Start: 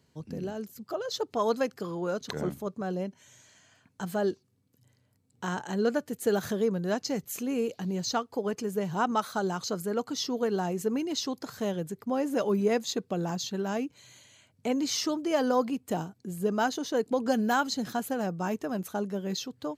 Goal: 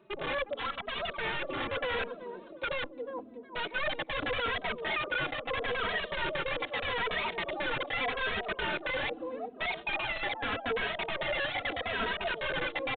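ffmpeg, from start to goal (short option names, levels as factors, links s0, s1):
-filter_complex "[0:a]asubboost=boost=9.5:cutoff=200,areverse,acompressor=threshold=0.02:ratio=8,areverse,atempo=0.58,asplit=2[s0][s1];[s1]adelay=949,lowpass=f=2100:p=1,volume=0.282,asplit=2[s2][s3];[s3]adelay=949,lowpass=f=2100:p=1,volume=0.46,asplit=2[s4][s5];[s5]adelay=949,lowpass=f=2100:p=1,volume=0.46,asplit=2[s6][s7];[s7]adelay=949,lowpass=f=2100:p=1,volume=0.46,asplit=2[s8][s9];[s9]adelay=949,lowpass=f=2100:p=1,volume=0.46[s10];[s0][s2][s4][s6][s8][s10]amix=inputs=6:normalize=0,aeval=exprs='(mod(44.7*val(0)+1,2)-1)/44.7':c=same,asetrate=115983,aresample=44100,aresample=8000,aresample=44100,asplit=2[s11][s12];[s12]adelay=2.8,afreqshift=-0.81[s13];[s11][s13]amix=inputs=2:normalize=1,volume=2.82"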